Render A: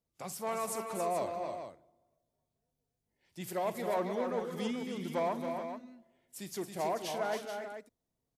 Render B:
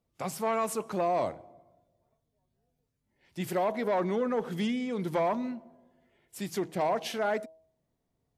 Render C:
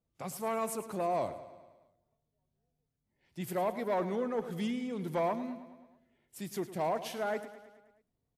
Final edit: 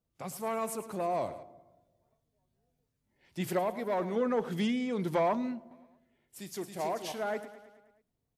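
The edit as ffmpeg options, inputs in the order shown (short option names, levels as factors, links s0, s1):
-filter_complex "[1:a]asplit=2[s0][s1];[2:a]asplit=4[s2][s3][s4][s5];[s2]atrim=end=1.432[s6];[s0]atrim=start=1.428:end=3.592[s7];[s3]atrim=start=3.588:end=4.162[s8];[s1]atrim=start=4.158:end=5.712[s9];[s4]atrim=start=5.708:end=6.402[s10];[0:a]atrim=start=6.398:end=7.122[s11];[s5]atrim=start=7.118[s12];[s6][s7]acrossfade=d=0.004:c1=hsin:c2=hsin[s13];[s13][s8]acrossfade=d=0.004:c1=hsin:c2=hsin[s14];[s14][s9]acrossfade=d=0.004:c1=hsin:c2=hsin[s15];[s15][s10]acrossfade=d=0.004:c1=hsin:c2=hsin[s16];[s16][s11]acrossfade=d=0.004:c1=hsin:c2=hsin[s17];[s17][s12]acrossfade=d=0.004:c1=hsin:c2=hsin"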